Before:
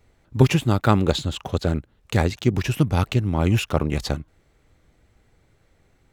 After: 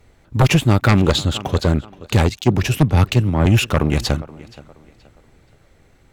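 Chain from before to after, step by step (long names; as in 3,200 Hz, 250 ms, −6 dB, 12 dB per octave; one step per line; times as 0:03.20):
tape delay 475 ms, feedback 35%, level −20.5 dB, low-pass 5,500 Hz
sine wavefolder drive 9 dB, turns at −1.5 dBFS
0:02.29–0:03.46: multiband upward and downward expander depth 100%
level −5.5 dB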